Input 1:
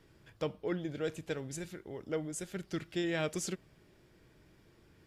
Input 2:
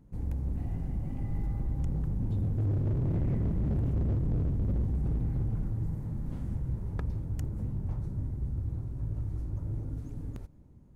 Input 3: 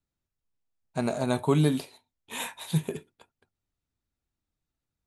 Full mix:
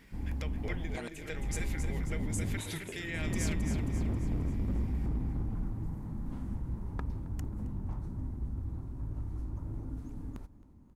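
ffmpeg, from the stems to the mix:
ffmpeg -i stem1.wav -i stem2.wav -i stem3.wav -filter_complex "[0:a]highshelf=frequency=6900:gain=9,acompressor=threshold=-37dB:ratio=6,equalizer=frequency=2100:width_type=o:width=0.63:gain=12.5,volume=1dB,asplit=2[link_01][link_02];[link_02]volume=-8.5dB[link_03];[1:a]equalizer=frequency=125:width_type=o:width=1:gain=-7,equalizer=frequency=250:width_type=o:width=1:gain=5,equalizer=frequency=500:width_type=o:width=1:gain=-5,equalizer=frequency=1000:width_type=o:width=1:gain=6,volume=-1.5dB,asplit=2[link_04][link_05];[link_05]volume=-21dB[link_06];[2:a]volume=-4dB,asplit=3[link_07][link_08][link_09];[link_07]atrim=end=1.08,asetpts=PTS-STARTPTS,afade=type=out:start_time=1.076:duration=0.004:curve=hsin[link_10];[link_08]atrim=start=1.08:end=2.55,asetpts=PTS-STARTPTS,volume=0[link_11];[link_09]atrim=start=2.55,asetpts=PTS-STARTPTS,afade=type=in:duration=0.004:curve=hsin[link_12];[link_10][link_11][link_12]concat=n=3:v=0:a=1,asplit=2[link_13][link_14];[link_14]apad=whole_len=483057[link_15];[link_04][link_15]sidechaincompress=threshold=-53dB:ratio=8:attack=16:release=239[link_16];[link_01][link_13]amix=inputs=2:normalize=0,lowshelf=frequency=320:gain=-11,alimiter=level_in=4dB:limit=-24dB:level=0:latency=1:release=155,volume=-4dB,volume=0dB[link_17];[link_03][link_06]amix=inputs=2:normalize=0,aecho=0:1:268|536|804|1072|1340|1608|1876:1|0.49|0.24|0.118|0.0576|0.0282|0.0138[link_18];[link_16][link_17][link_18]amix=inputs=3:normalize=0" out.wav

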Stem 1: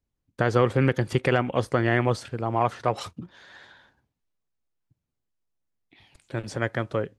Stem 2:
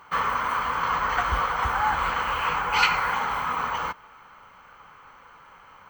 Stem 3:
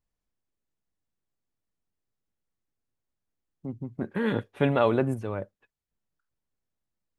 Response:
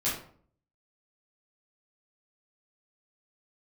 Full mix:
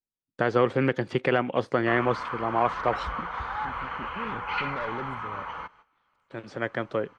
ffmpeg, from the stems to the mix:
-filter_complex "[0:a]highpass=180,acrossover=split=4200[link_01][link_02];[link_02]acompressor=threshold=-50dB:ratio=4:attack=1:release=60[link_03];[link_01][link_03]amix=inputs=2:normalize=0,volume=-0.5dB[link_04];[1:a]acrossover=split=3400[link_05][link_06];[link_06]acompressor=threshold=-54dB:ratio=4:attack=1:release=60[link_07];[link_05][link_07]amix=inputs=2:normalize=0,adelay=1750,volume=-8dB[link_08];[2:a]asoftclip=type=tanh:threshold=-21dB,volume=-9dB,asplit=2[link_09][link_10];[link_10]apad=whole_len=317063[link_11];[link_04][link_11]sidechaincompress=threshold=-56dB:ratio=8:attack=40:release=1040[link_12];[link_12][link_08][link_09]amix=inputs=3:normalize=0,lowpass=5600,agate=range=-14dB:threshold=-54dB:ratio=16:detection=peak"

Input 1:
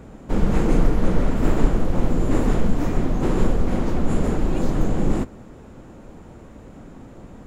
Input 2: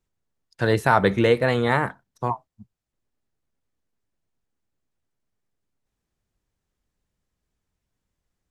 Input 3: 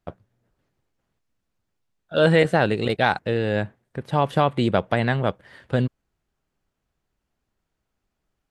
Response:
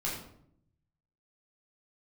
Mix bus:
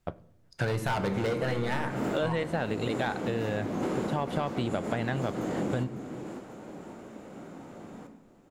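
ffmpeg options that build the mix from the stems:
-filter_complex "[0:a]highpass=230,adelay=600,volume=-3.5dB,asplit=3[link_01][link_02][link_03];[link_02]volume=-7.5dB[link_04];[link_03]volume=-12.5dB[link_05];[1:a]asoftclip=type=hard:threshold=-18.5dB,volume=1.5dB,asplit=3[link_06][link_07][link_08];[link_07]volume=-10.5dB[link_09];[2:a]asoftclip=type=tanh:threshold=-6dB,volume=0dB,asplit=2[link_10][link_11];[link_11]volume=-22dB[link_12];[link_08]apad=whole_len=355787[link_13];[link_01][link_13]sidechaincompress=threshold=-32dB:ratio=8:attack=16:release=154[link_14];[3:a]atrim=start_sample=2205[link_15];[link_04][link_09][link_12]amix=inputs=3:normalize=0[link_16];[link_16][link_15]afir=irnorm=-1:irlink=0[link_17];[link_05]aecho=0:1:551|1102|1653|2204|2755|3306:1|0.45|0.202|0.0911|0.041|0.0185[link_18];[link_14][link_06][link_10][link_17][link_18]amix=inputs=5:normalize=0,acompressor=threshold=-27dB:ratio=6"

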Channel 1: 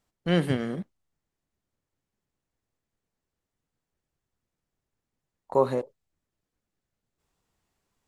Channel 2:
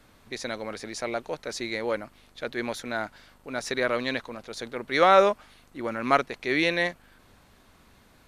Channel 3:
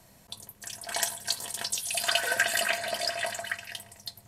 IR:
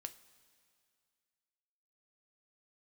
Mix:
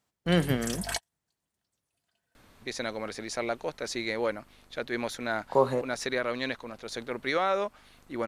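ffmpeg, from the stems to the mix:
-filter_complex "[0:a]highpass=98,equalizer=frequency=330:width_type=o:width=1.7:gain=-3,volume=1dB,asplit=2[link_01][link_02];[1:a]alimiter=limit=-15.5dB:level=0:latency=1:release=456,adelay=2350,volume=-0.5dB[link_03];[2:a]dynaudnorm=framelen=110:gausssize=9:maxgain=11.5dB,aeval=exprs='val(0)+0.0158*(sin(2*PI*50*n/s)+sin(2*PI*2*50*n/s)/2+sin(2*PI*3*50*n/s)/3+sin(2*PI*4*50*n/s)/4+sin(2*PI*5*50*n/s)/5)':channel_layout=same,volume=-6dB[link_04];[link_02]apad=whole_len=188354[link_05];[link_04][link_05]sidechaingate=range=-56dB:threshold=-52dB:ratio=16:detection=peak[link_06];[link_01][link_03][link_06]amix=inputs=3:normalize=0"

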